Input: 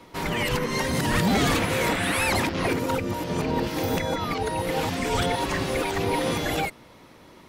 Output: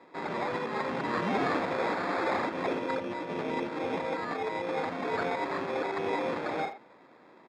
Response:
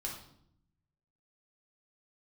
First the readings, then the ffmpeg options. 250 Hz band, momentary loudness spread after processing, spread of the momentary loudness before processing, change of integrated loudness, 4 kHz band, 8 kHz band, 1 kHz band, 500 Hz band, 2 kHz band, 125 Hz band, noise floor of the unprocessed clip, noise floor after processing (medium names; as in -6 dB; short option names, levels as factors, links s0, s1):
-8.0 dB, 4 LU, 5 LU, -6.5 dB, -14.0 dB, under -20 dB, -4.0 dB, -4.5 dB, -7.5 dB, -16.0 dB, -50 dBFS, -56 dBFS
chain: -filter_complex "[0:a]acrusher=samples=15:mix=1:aa=0.000001,highpass=270,lowpass=2700,asplit=2[s0][s1];[s1]adelay=80,highpass=300,lowpass=3400,asoftclip=type=hard:threshold=0.0891,volume=0.282[s2];[s0][s2]amix=inputs=2:normalize=0,volume=0.596"